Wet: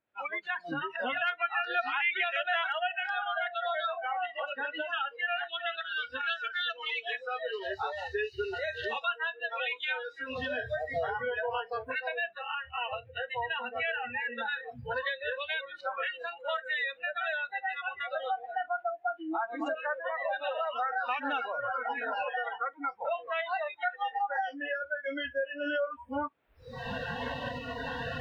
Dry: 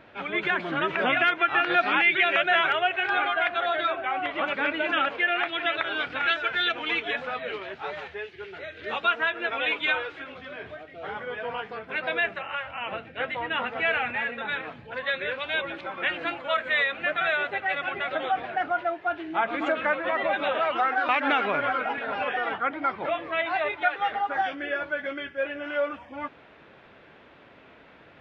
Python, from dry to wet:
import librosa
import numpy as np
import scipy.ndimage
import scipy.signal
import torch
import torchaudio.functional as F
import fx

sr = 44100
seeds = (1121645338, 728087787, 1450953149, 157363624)

y = fx.recorder_agc(x, sr, target_db=-15.5, rise_db_per_s=38.0, max_gain_db=30)
y = fx.noise_reduce_blind(y, sr, reduce_db=29)
y = fx.low_shelf(y, sr, hz=230.0, db=-7.5, at=(8.59, 9.22))
y = y * librosa.db_to_amplitude(-7.5)